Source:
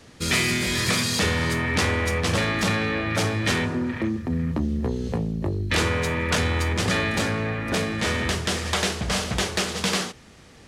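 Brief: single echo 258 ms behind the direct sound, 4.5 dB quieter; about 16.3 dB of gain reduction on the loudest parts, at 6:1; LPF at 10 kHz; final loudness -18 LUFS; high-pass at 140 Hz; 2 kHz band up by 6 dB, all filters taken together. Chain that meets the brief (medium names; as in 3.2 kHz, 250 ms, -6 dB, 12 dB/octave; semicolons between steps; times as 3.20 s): high-pass 140 Hz; low-pass 10 kHz; peaking EQ 2 kHz +7 dB; compression 6:1, threshold -34 dBFS; delay 258 ms -4.5 dB; trim +15.5 dB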